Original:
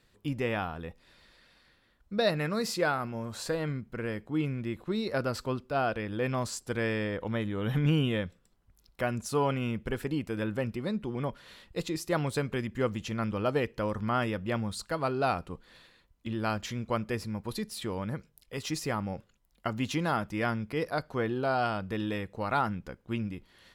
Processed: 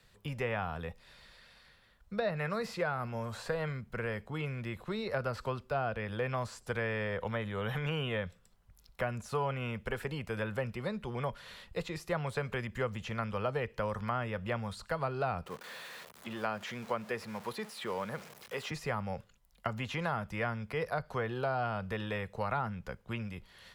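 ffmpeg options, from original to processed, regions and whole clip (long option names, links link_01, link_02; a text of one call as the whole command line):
ffmpeg -i in.wav -filter_complex "[0:a]asettb=1/sr,asplit=3[link_01][link_02][link_03];[link_01]atrim=end=15.464[link_04];[link_02]atrim=start=15.46:end=18.71,asetpts=PTS-STARTPTS,afade=type=in:duration=0.004:curve=qsin,afade=type=out:start_time=3.246:duration=0.004:curve=qsin,aeval=exprs='val(0)+0.5*0.00708*sgn(val(0))':channel_layout=same,highpass=270[link_05];[link_03]atrim=start=18.706[link_06];[link_04][link_05]acrossfade=duration=0.004:curve1=hsin:curve2=qsin[link_07];[link_07][link_06]acrossfade=duration=0.004:curve1=qsin:curve2=hsin,acrossover=split=2700[link_08][link_09];[link_09]acompressor=threshold=-53dB:ratio=4:attack=1:release=60[link_10];[link_08][link_10]amix=inputs=2:normalize=0,equalizer=frequency=300:width_type=o:width=0.47:gain=-14.5,acrossover=split=130|380[link_11][link_12][link_13];[link_11]acompressor=threshold=-46dB:ratio=4[link_14];[link_12]acompressor=threshold=-47dB:ratio=4[link_15];[link_13]acompressor=threshold=-35dB:ratio=4[link_16];[link_14][link_15][link_16]amix=inputs=3:normalize=0,volume=3dB" out.wav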